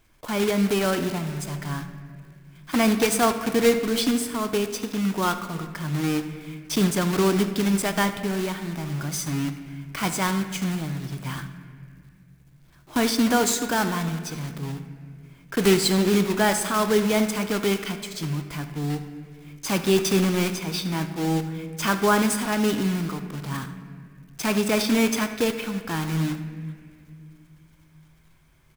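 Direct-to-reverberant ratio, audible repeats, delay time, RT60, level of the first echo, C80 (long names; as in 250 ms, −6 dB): 8.5 dB, 1, 75 ms, 2.2 s, −16.0 dB, 11.0 dB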